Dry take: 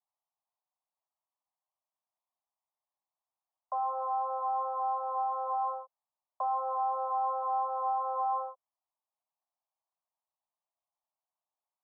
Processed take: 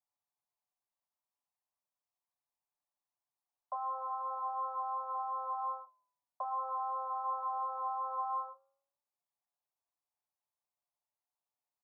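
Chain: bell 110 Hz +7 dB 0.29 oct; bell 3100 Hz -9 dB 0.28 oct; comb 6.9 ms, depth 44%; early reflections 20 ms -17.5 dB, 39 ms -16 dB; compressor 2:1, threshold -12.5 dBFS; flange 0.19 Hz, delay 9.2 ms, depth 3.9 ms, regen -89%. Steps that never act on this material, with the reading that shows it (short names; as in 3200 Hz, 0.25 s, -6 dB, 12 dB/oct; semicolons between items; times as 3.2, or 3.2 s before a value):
bell 110 Hz: input band starts at 510 Hz; bell 3100 Hz: input band ends at 1400 Hz; compressor, threshold -12.5 dBFS: input peak -22.5 dBFS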